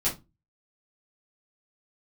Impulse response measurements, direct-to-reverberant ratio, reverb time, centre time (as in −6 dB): −8.5 dB, 0.20 s, 21 ms